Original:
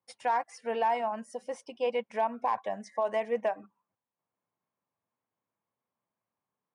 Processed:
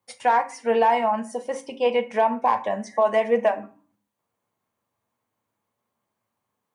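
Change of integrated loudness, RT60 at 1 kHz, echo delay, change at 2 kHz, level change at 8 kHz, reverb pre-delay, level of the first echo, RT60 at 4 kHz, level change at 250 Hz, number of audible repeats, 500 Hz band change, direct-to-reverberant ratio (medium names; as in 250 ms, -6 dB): +9.0 dB, 0.40 s, no echo, +9.5 dB, no reading, 8 ms, no echo, 0.25 s, +11.5 dB, no echo, +9.5 dB, 6.5 dB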